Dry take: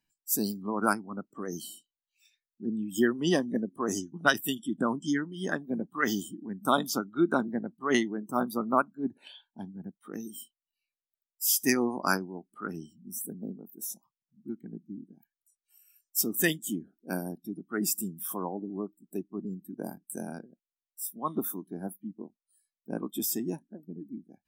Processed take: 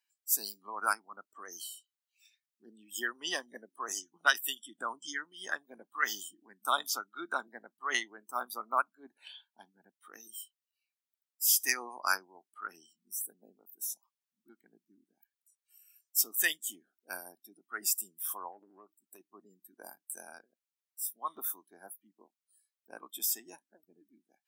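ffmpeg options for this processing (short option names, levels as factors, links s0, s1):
-filter_complex "[0:a]asplit=3[s0][s1][s2];[s0]afade=t=out:st=18.51:d=0.02[s3];[s1]acompressor=threshold=0.0158:ratio=3:attack=3.2:release=140:knee=1:detection=peak,afade=t=in:st=18.51:d=0.02,afade=t=out:st=19.19:d=0.02[s4];[s2]afade=t=in:st=19.19:d=0.02[s5];[s3][s4][s5]amix=inputs=3:normalize=0,highpass=1100"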